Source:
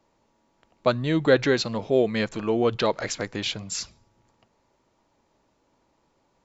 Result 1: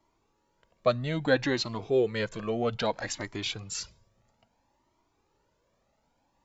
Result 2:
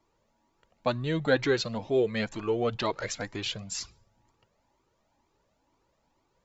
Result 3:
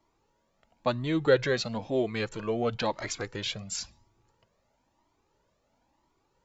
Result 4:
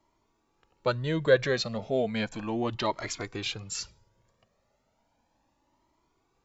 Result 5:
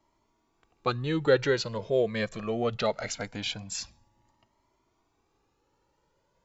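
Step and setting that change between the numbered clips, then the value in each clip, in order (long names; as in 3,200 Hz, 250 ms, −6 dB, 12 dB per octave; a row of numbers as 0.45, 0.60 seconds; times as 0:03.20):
flanger whose copies keep moving one way, speed: 0.61, 2.1, 0.99, 0.34, 0.22 Hertz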